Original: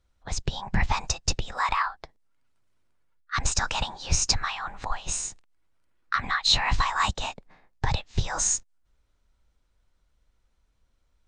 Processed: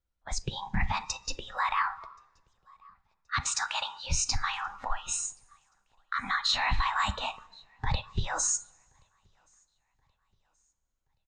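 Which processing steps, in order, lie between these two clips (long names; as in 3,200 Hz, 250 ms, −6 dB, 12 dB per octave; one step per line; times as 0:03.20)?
0:03.40–0:04.04: high-pass filter 730 Hz 6 dB per octave
brickwall limiter −16 dBFS, peak gain reduction 9 dB
on a send: repeating echo 1,076 ms, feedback 43%, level −23.5 dB
on the sum: dense smooth reverb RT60 1.6 s, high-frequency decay 0.8×, DRR 12 dB
noise reduction from a noise print of the clip's start 13 dB
level −1.5 dB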